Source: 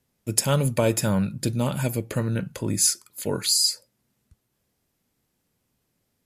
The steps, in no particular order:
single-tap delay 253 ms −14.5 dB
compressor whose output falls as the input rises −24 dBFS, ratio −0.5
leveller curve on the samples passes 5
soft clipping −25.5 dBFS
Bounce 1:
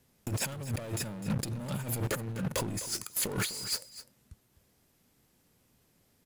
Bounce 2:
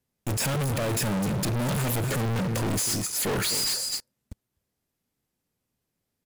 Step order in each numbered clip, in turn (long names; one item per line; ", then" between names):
leveller curve on the samples, then compressor whose output falls as the input rises, then soft clipping, then single-tap delay
compressor whose output falls as the input rises, then single-tap delay, then leveller curve on the samples, then soft clipping